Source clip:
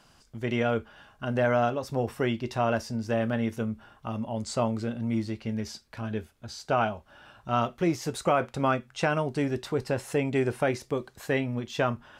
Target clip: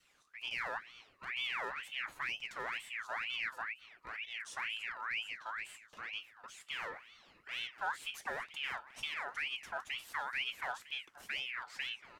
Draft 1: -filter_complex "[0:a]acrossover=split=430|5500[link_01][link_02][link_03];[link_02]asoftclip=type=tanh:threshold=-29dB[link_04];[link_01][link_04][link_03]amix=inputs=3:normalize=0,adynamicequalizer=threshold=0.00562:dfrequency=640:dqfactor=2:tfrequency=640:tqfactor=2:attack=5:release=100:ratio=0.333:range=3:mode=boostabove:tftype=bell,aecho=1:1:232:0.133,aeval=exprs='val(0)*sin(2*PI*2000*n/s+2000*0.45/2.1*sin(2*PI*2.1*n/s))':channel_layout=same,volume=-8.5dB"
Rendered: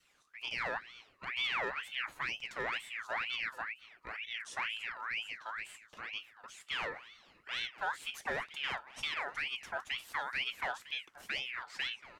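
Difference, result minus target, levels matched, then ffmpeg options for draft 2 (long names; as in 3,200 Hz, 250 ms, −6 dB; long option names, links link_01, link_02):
soft clipping: distortion −6 dB
-filter_complex "[0:a]acrossover=split=430|5500[link_01][link_02][link_03];[link_02]asoftclip=type=tanh:threshold=-40dB[link_04];[link_01][link_04][link_03]amix=inputs=3:normalize=0,adynamicequalizer=threshold=0.00562:dfrequency=640:dqfactor=2:tfrequency=640:tqfactor=2:attack=5:release=100:ratio=0.333:range=3:mode=boostabove:tftype=bell,aecho=1:1:232:0.133,aeval=exprs='val(0)*sin(2*PI*2000*n/s+2000*0.45/2.1*sin(2*PI*2.1*n/s))':channel_layout=same,volume=-8.5dB"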